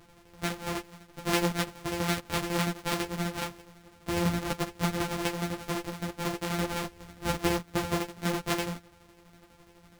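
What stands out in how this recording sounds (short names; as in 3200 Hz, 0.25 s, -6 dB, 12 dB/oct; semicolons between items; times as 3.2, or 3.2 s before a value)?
a buzz of ramps at a fixed pitch in blocks of 256 samples; tremolo saw down 12 Hz, depth 60%; a shimmering, thickened sound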